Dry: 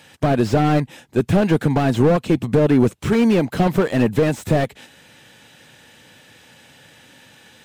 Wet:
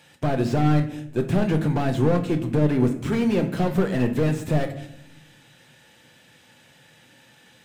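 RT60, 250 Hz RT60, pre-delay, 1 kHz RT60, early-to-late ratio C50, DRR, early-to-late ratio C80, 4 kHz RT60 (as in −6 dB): 0.75 s, 1.4 s, 6 ms, 0.60 s, 11.5 dB, 5.5 dB, 14.0 dB, 0.50 s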